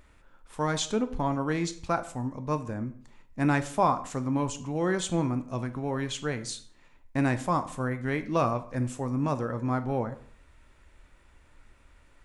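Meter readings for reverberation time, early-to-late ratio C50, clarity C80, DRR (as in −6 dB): 0.55 s, 14.0 dB, 17.5 dB, 9.5 dB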